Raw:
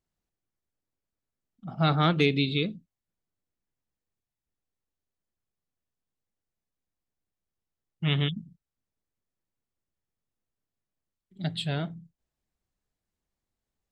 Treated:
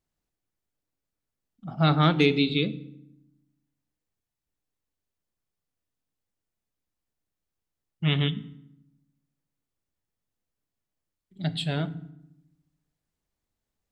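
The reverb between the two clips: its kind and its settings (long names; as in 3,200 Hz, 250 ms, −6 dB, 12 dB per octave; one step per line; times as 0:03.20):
feedback delay network reverb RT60 0.8 s, low-frequency decay 1.6×, high-frequency decay 0.75×, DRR 13.5 dB
level +1.5 dB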